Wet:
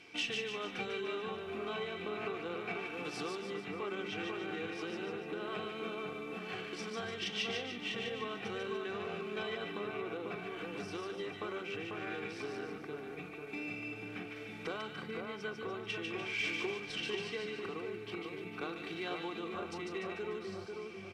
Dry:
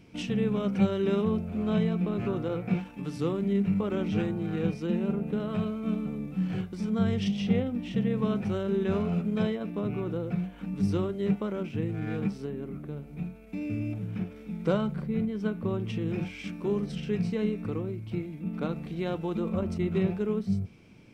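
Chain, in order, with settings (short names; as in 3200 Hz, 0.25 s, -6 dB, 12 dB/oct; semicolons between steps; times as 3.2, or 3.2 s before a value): comb 2.6 ms, depth 50%; compressor, threshold -34 dBFS, peak gain reduction 12 dB; band-pass 2600 Hz, Q 0.58; in parallel at -9.5 dB: one-sided clip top -43 dBFS; on the sum: split-band echo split 1600 Hz, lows 0.494 s, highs 0.147 s, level -3.5 dB; gain +4.5 dB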